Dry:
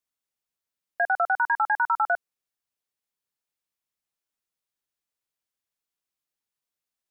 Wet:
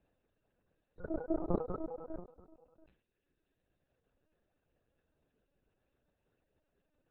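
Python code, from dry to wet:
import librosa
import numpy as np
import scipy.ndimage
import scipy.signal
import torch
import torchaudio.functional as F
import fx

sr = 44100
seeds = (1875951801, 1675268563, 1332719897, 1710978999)

y = fx.band_invert(x, sr, width_hz=2000)
y = fx.dereverb_blind(y, sr, rt60_s=1.3)
y = y + 0.44 * np.pad(y, (int(4.5 * sr / 1000.0), 0))[:len(y)]
y = fx.transient(y, sr, attack_db=9, sustain_db=-6)
y = fx.over_compress(y, sr, threshold_db=-33.0, ratio=-0.5)
y = y * np.sin(2.0 * np.pi * 160.0 * np.arange(len(y)) / sr)
y = np.convolve(y, np.full(41, 1.0 / 41))[:len(y)]
y = y + 10.0 ** (-21.0 / 20.0) * np.pad(y, (int(688 * sr / 1000.0), 0))[:len(y)]
y = fx.lpc_vocoder(y, sr, seeds[0], excitation='pitch_kept', order=10)
y = fx.sustainer(y, sr, db_per_s=130.0)
y = y * 10.0 ** (11.0 / 20.0)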